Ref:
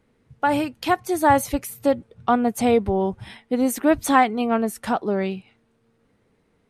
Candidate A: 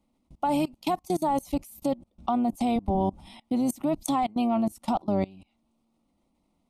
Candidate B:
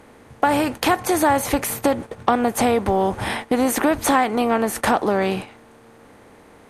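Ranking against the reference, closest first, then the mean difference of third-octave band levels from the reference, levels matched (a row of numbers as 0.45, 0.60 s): A, B; 5.5, 9.0 dB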